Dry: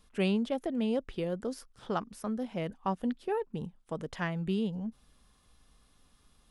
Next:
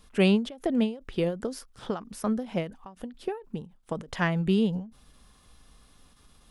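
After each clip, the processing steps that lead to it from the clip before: endings held to a fixed fall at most 150 dB/s; trim +7.5 dB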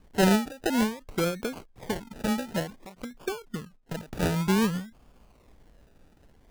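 decimation with a swept rate 32×, swing 60% 0.54 Hz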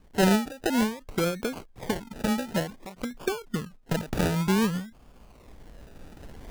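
recorder AGC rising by 8.4 dB/s

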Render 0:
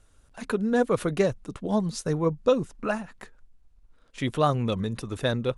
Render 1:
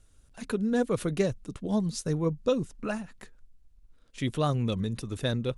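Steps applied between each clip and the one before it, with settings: peaking EQ 980 Hz -7.5 dB 2.5 oct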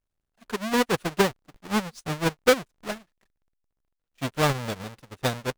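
square wave that keeps the level; overdrive pedal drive 4 dB, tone 7.5 kHz, clips at -13.5 dBFS; upward expansion 2.5:1, over -40 dBFS; trim +7 dB

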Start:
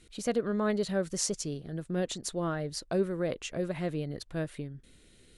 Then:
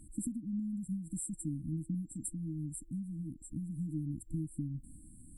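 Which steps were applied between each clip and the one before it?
compression 4:1, threshold -40 dBFS, peak gain reduction 14.5 dB; FFT band-reject 330–7400 Hz; trim +7 dB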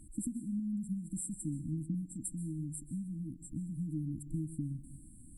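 plate-style reverb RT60 0.63 s, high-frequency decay 0.9×, pre-delay 115 ms, DRR 14 dB

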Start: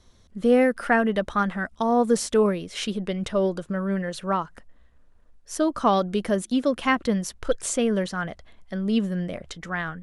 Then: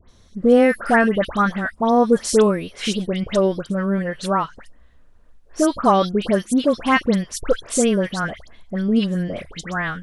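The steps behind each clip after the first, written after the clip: phase dispersion highs, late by 91 ms, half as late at 2 kHz; trim +5 dB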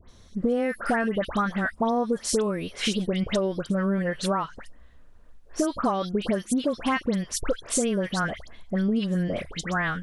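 compression 12:1, threshold -21 dBFS, peak gain reduction 13 dB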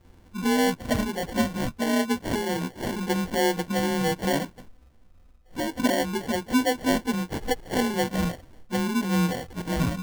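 frequency axis rescaled in octaves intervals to 89%; rippled EQ curve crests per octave 2, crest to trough 12 dB; sample-and-hold 35×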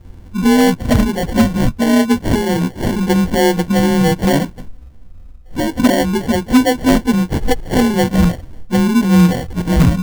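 bass shelf 220 Hz +11 dB; in parallel at -8.5 dB: integer overflow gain 9 dB; on the sum: trim +5 dB

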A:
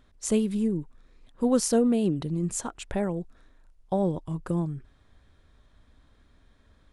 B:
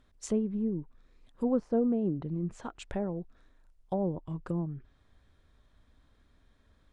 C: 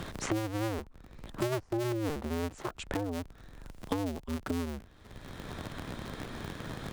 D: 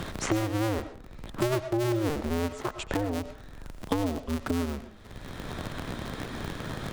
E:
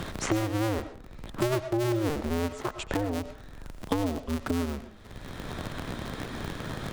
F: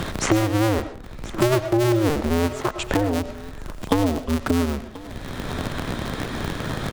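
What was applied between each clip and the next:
low-pass that closes with the level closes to 1 kHz, closed at -23 dBFS; trim -5 dB
cycle switcher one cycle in 2, inverted; three bands compressed up and down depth 100%; trim -1.5 dB
reverberation RT60 0.40 s, pre-delay 65 ms, DRR 10 dB; trim +4.5 dB
no audible change
delay 1034 ms -19 dB; trim +8 dB

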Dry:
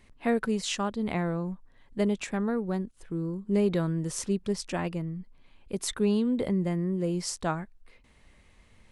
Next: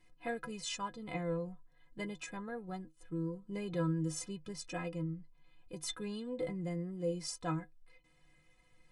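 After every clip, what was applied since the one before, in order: inharmonic resonator 150 Hz, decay 0.2 s, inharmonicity 0.03; trim +1.5 dB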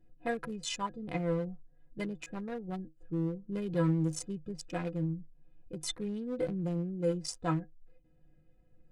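local Wiener filter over 41 samples; trim +5.5 dB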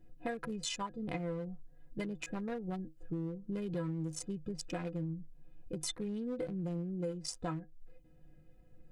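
compression 6:1, threshold -40 dBFS, peak gain reduction 14.5 dB; trim +4.5 dB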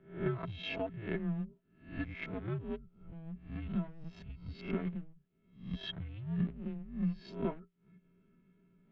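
reverse spectral sustain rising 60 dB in 0.44 s; mistuned SSB -330 Hz 420–3500 Hz; ten-band graphic EQ 250 Hz +7 dB, 1 kHz -6 dB, 2 kHz -3 dB; trim +3.5 dB

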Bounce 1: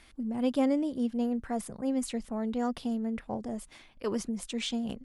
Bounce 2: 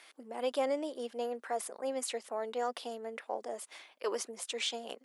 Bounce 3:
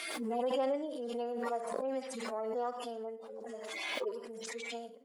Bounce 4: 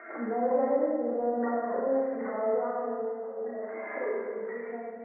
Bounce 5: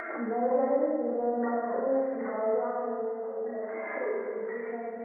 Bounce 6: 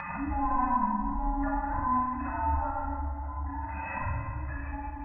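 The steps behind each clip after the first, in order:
high-pass 430 Hz 24 dB/octave; in parallel at 0 dB: peak limiter -29 dBFS, peak gain reduction 7.5 dB; on the sum: trim -3.5 dB
harmonic-percussive separation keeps harmonic; Schroeder reverb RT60 0.41 s, DRR 12 dB; swell ahead of each attack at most 25 dB/s; trim -1.5 dB
rippled Chebyshev low-pass 2 kHz, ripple 3 dB; Schroeder reverb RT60 1.7 s, combs from 26 ms, DRR -3.5 dB; trim +2.5 dB
upward compressor, threshold -30 dBFS
every band turned upside down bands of 500 Hz

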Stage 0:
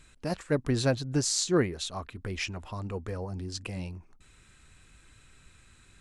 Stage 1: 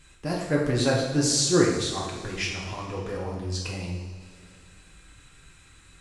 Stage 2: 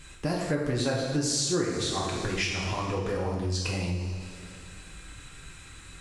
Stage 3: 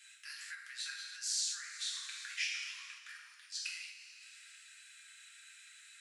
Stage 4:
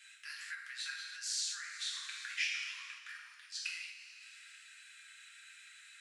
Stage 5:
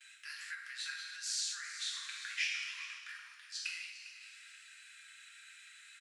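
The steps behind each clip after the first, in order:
reverberation, pre-delay 3 ms, DRR -4 dB
compression 4:1, threshold -33 dBFS, peak gain reduction 16 dB; trim +6.5 dB
steep high-pass 1.5 kHz 48 dB/octave; trim -6.5 dB
tone controls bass +10 dB, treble -6 dB; trim +3 dB
gate with hold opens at -54 dBFS; delay 401 ms -14.5 dB

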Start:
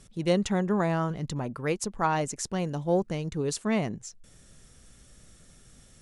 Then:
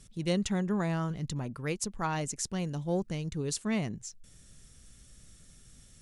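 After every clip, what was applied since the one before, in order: peaking EQ 700 Hz -8 dB 2.9 oct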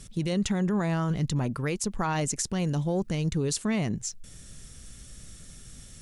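peak limiter -28 dBFS, peak gain reduction 10.5 dB; trim +9 dB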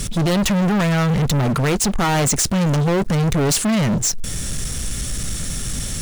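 waveshaping leveller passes 5; trim +4 dB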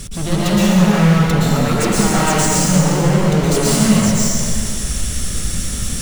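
plate-style reverb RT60 2.3 s, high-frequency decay 0.9×, pre-delay 105 ms, DRR -8.5 dB; trim -5.5 dB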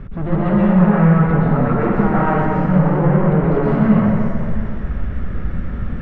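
low-pass 1.7 kHz 24 dB/octave

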